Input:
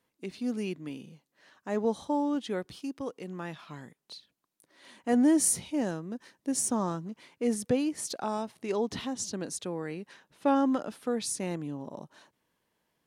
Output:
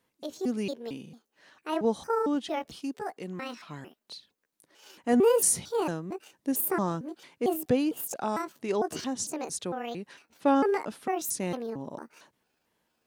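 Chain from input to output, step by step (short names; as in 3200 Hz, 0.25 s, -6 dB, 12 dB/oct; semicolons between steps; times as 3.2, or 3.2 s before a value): trilling pitch shifter +7.5 st, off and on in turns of 0.226 s; gain +2 dB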